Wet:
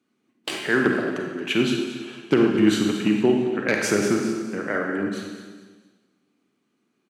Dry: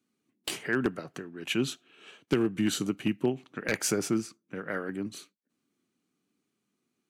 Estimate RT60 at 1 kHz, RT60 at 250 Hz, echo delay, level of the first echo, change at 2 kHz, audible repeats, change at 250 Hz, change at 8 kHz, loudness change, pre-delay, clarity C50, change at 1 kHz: 1.4 s, 1.4 s, 0.226 s, -13.0 dB, +9.5 dB, 3, +9.5 dB, +1.5 dB, +8.5 dB, 26 ms, 2.5 dB, +10.0 dB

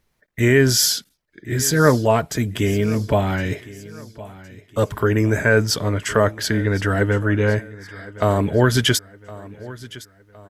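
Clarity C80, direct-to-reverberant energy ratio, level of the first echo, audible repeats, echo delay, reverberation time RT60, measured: none, none, -19.0 dB, 3, 1.063 s, none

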